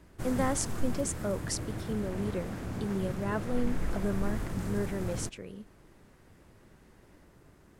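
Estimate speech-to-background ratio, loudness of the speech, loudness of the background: 3.0 dB, -35.0 LUFS, -38.0 LUFS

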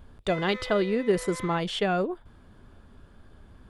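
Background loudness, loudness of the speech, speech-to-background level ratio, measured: -40.0 LUFS, -27.0 LUFS, 13.0 dB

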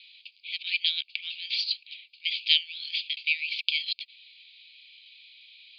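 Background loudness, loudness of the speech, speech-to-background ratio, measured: -44.0 LUFS, -28.0 LUFS, 16.0 dB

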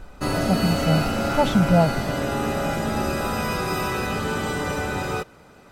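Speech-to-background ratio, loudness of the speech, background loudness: 2.5 dB, -22.5 LUFS, -25.0 LUFS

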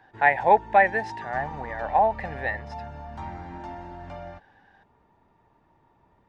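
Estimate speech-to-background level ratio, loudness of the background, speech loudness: 15.5 dB, -39.0 LUFS, -23.5 LUFS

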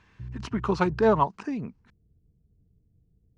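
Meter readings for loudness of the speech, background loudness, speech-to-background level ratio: -26.0 LUFS, -42.0 LUFS, 16.0 dB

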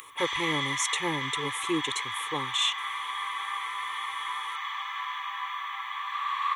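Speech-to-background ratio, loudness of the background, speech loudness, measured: 1.0 dB, -32.0 LUFS, -31.0 LUFS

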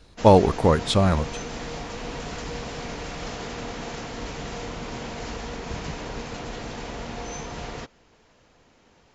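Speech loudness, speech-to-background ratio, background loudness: -19.5 LUFS, 15.0 dB, -34.5 LUFS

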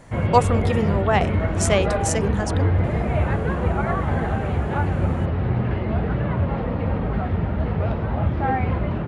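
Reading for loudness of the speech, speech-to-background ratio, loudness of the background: -24.0 LUFS, -1.0 dB, -23.0 LUFS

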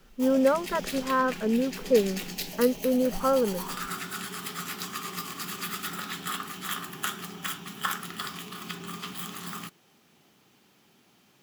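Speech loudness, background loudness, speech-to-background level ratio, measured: -26.0 LUFS, -35.0 LUFS, 9.0 dB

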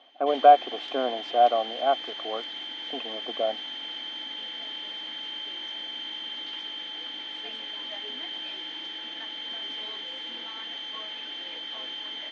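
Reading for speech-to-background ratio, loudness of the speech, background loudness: 10.5 dB, -23.5 LUFS, -34.0 LUFS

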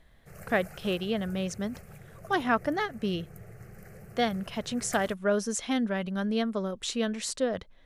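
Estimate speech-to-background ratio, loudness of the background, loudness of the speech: 18.0 dB, -48.5 LUFS, -30.5 LUFS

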